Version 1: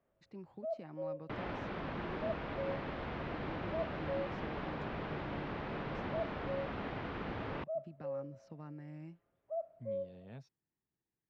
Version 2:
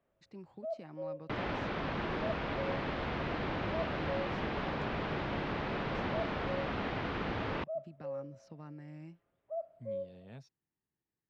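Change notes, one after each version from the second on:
second sound +4.5 dB; master: add treble shelf 3.7 kHz +7.5 dB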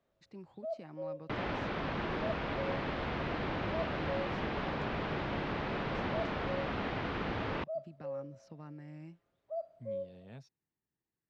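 first sound: remove Savitzky-Golay filter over 25 samples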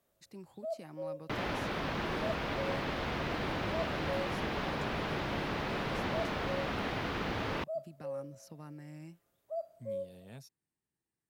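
master: remove distance through air 170 m

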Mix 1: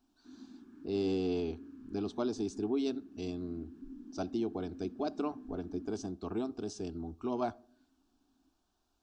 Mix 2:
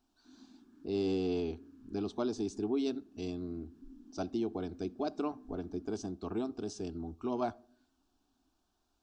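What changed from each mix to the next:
background -6.0 dB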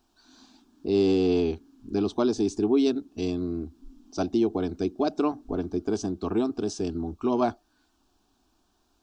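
speech +11.5 dB; reverb: off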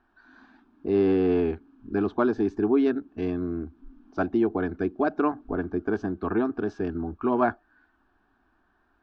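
speech: add resonant low-pass 1.7 kHz, resonance Q 4.8

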